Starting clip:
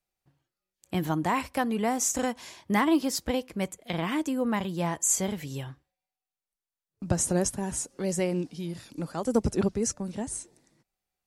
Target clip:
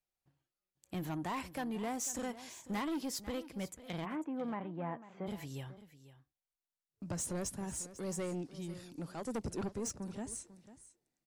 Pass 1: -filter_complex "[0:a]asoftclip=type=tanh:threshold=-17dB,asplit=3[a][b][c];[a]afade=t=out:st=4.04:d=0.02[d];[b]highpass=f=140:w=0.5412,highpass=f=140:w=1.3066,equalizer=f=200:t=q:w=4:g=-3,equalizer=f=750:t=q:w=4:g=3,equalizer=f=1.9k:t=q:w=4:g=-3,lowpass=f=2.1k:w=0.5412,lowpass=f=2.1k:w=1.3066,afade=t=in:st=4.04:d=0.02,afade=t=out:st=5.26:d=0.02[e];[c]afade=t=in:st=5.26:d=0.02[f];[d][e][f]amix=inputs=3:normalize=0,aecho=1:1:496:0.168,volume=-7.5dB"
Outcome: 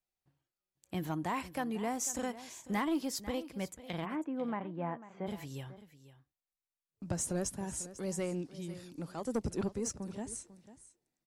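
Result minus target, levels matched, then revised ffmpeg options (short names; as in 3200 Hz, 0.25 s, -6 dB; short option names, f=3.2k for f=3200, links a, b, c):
soft clip: distortion -9 dB
-filter_complex "[0:a]asoftclip=type=tanh:threshold=-25.5dB,asplit=3[a][b][c];[a]afade=t=out:st=4.04:d=0.02[d];[b]highpass=f=140:w=0.5412,highpass=f=140:w=1.3066,equalizer=f=200:t=q:w=4:g=-3,equalizer=f=750:t=q:w=4:g=3,equalizer=f=1.9k:t=q:w=4:g=-3,lowpass=f=2.1k:w=0.5412,lowpass=f=2.1k:w=1.3066,afade=t=in:st=4.04:d=0.02,afade=t=out:st=5.26:d=0.02[e];[c]afade=t=in:st=5.26:d=0.02[f];[d][e][f]amix=inputs=3:normalize=0,aecho=1:1:496:0.168,volume=-7.5dB"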